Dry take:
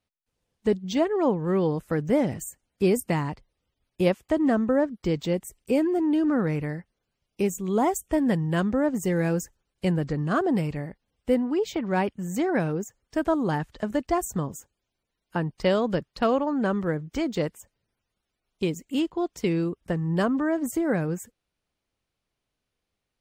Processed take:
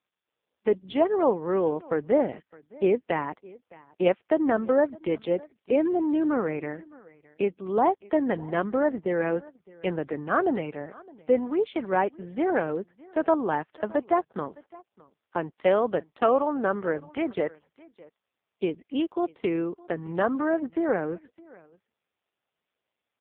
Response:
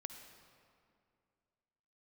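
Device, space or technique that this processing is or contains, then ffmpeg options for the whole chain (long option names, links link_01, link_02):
satellite phone: -af "highpass=370,lowpass=3100,aecho=1:1:613:0.0708,volume=3.5dB" -ar 8000 -c:a libopencore_amrnb -b:a 5150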